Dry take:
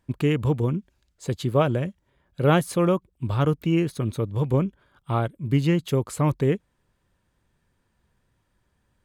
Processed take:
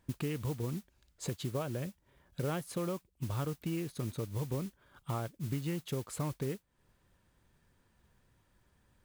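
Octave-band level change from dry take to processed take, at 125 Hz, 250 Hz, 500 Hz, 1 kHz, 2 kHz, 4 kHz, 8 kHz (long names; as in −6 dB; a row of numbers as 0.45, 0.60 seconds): −13.0, −14.0, −15.0, −15.0, −14.5, −10.5, −5.5 decibels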